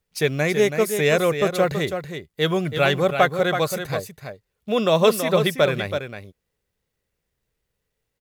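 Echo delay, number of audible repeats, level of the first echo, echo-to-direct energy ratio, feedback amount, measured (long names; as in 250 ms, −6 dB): 328 ms, 1, −8.0 dB, −8.0 dB, repeats not evenly spaced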